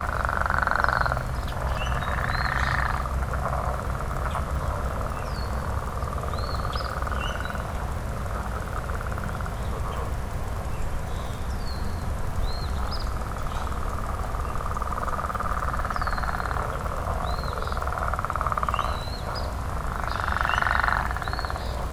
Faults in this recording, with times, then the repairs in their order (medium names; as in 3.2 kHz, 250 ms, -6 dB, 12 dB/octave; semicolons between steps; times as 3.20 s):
crackle 33 per s -33 dBFS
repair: de-click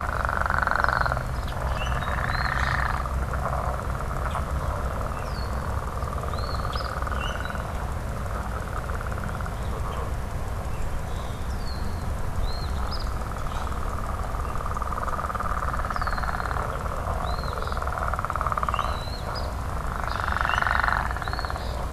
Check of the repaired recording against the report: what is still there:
nothing left